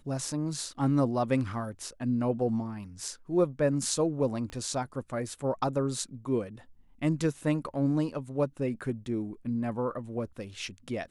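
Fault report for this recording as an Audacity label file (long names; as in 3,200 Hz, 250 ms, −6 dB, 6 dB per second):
4.500000	4.500000	click −28 dBFS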